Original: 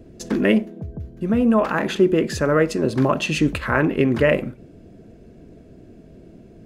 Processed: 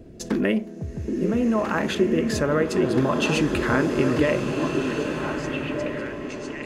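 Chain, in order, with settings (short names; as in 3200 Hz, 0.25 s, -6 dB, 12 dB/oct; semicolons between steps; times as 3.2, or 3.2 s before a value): compressor 3:1, threshold -20 dBFS, peak gain reduction 7.5 dB; delay with a stepping band-pass 0.771 s, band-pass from 330 Hz, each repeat 1.4 oct, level -2 dB; bloom reverb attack 1.67 s, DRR 5.5 dB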